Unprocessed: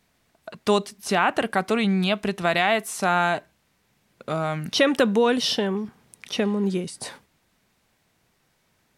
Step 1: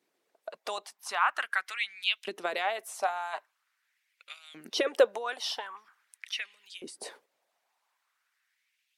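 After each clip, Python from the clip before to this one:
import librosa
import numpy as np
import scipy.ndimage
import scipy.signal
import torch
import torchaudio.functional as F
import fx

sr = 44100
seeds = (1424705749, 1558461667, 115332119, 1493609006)

y = fx.hpss(x, sr, part='harmonic', gain_db=-13)
y = fx.filter_lfo_highpass(y, sr, shape='saw_up', hz=0.44, low_hz=320.0, high_hz=3300.0, q=3.0)
y = F.gain(torch.from_numpy(y), -7.5).numpy()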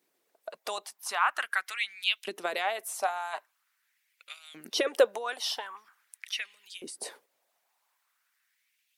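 y = fx.high_shelf(x, sr, hz=9400.0, db=11.5)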